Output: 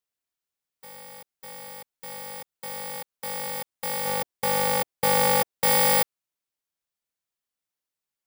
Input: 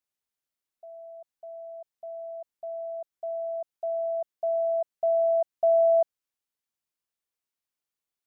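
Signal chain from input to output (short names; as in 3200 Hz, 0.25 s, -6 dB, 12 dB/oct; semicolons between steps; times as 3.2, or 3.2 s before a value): FFT order left unsorted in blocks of 32 samples; 4.05–5.52 dynamic EQ 520 Hz, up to +8 dB, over -44 dBFS, Q 1.7; polarity switched at an audio rate 160 Hz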